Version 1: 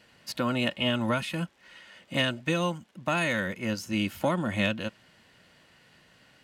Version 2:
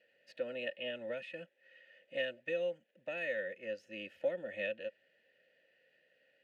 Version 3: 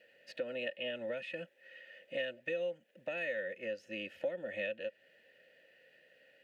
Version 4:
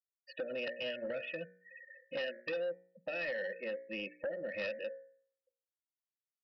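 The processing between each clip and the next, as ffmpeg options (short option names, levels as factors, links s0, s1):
-filter_complex "[0:a]asplit=3[s0][s1][s2];[s0]bandpass=f=530:t=q:w=8,volume=1[s3];[s1]bandpass=f=1840:t=q:w=8,volume=0.501[s4];[s2]bandpass=f=2480:t=q:w=8,volume=0.355[s5];[s3][s4][s5]amix=inputs=3:normalize=0,volume=0.841"
-af "acompressor=threshold=0.00447:ratio=2,volume=2.24"
-af "afftfilt=real='re*gte(hypot(re,im),0.00794)':imag='im*gte(hypot(re,im),0.00794)':win_size=1024:overlap=0.75,bandreject=f=60.12:t=h:w=4,bandreject=f=120.24:t=h:w=4,bandreject=f=180.36:t=h:w=4,bandreject=f=240.48:t=h:w=4,bandreject=f=300.6:t=h:w=4,bandreject=f=360.72:t=h:w=4,bandreject=f=420.84:t=h:w=4,bandreject=f=480.96:t=h:w=4,bandreject=f=541.08:t=h:w=4,bandreject=f=601.2:t=h:w=4,bandreject=f=661.32:t=h:w=4,bandreject=f=721.44:t=h:w=4,bandreject=f=781.56:t=h:w=4,bandreject=f=841.68:t=h:w=4,bandreject=f=901.8:t=h:w=4,bandreject=f=961.92:t=h:w=4,bandreject=f=1022.04:t=h:w=4,bandreject=f=1082.16:t=h:w=4,bandreject=f=1142.28:t=h:w=4,bandreject=f=1202.4:t=h:w=4,bandreject=f=1262.52:t=h:w=4,bandreject=f=1322.64:t=h:w=4,bandreject=f=1382.76:t=h:w=4,bandreject=f=1442.88:t=h:w=4,bandreject=f=1503:t=h:w=4,bandreject=f=1563.12:t=h:w=4,bandreject=f=1623.24:t=h:w=4,bandreject=f=1683.36:t=h:w=4,bandreject=f=1743.48:t=h:w=4,bandreject=f=1803.6:t=h:w=4,bandreject=f=1863.72:t=h:w=4,bandreject=f=1923.84:t=h:w=4,bandreject=f=1983.96:t=h:w=4,bandreject=f=2044.08:t=h:w=4,bandreject=f=2104.2:t=h:w=4,bandreject=f=2164.32:t=h:w=4,bandreject=f=2224.44:t=h:w=4,bandreject=f=2284.56:t=h:w=4,bandreject=f=2344.68:t=h:w=4,bandreject=f=2404.8:t=h:w=4,aresample=11025,aeval=exprs='0.0562*sin(PI/2*2*val(0)/0.0562)':c=same,aresample=44100,volume=0.422"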